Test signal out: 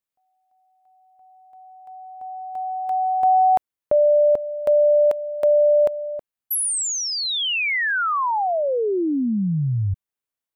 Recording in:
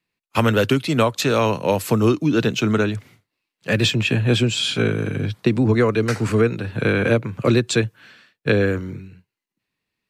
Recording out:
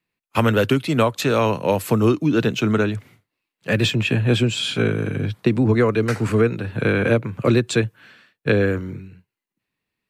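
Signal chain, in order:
parametric band 5,400 Hz −4.5 dB 1.3 octaves

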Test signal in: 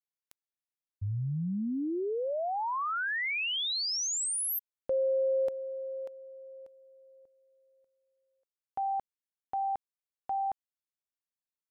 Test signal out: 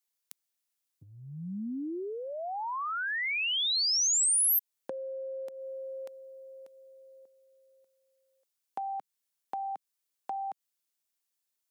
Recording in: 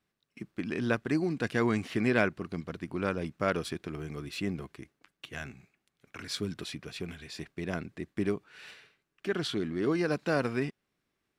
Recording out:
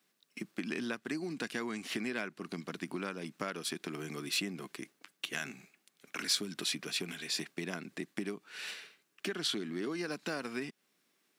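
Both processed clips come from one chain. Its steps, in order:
downward compressor 8 to 1, threshold −36 dBFS
dynamic equaliser 530 Hz, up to −4 dB, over −52 dBFS, Q 1.9
high-pass filter 180 Hz 24 dB per octave
high-shelf EQ 3,200 Hz +10 dB
level +3 dB

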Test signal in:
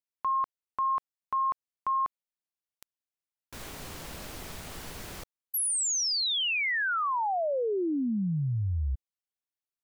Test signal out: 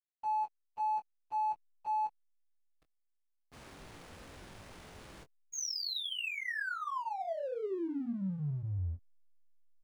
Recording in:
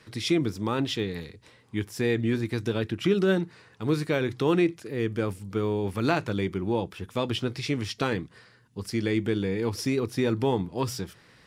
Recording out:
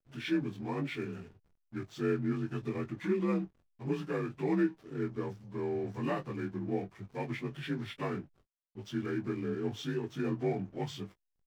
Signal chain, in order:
partials spread apart or drawn together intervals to 85%
slack as between gear wheels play −42 dBFS
double-tracking delay 21 ms −9 dB
level −7 dB

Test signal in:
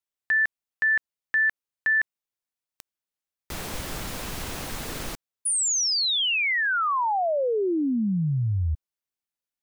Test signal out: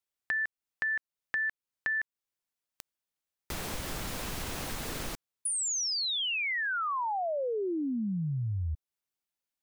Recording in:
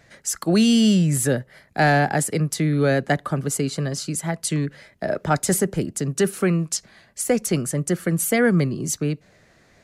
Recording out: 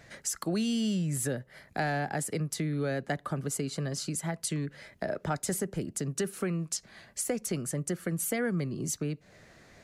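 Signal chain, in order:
downward compressor 2.5 to 1, threshold −34 dBFS

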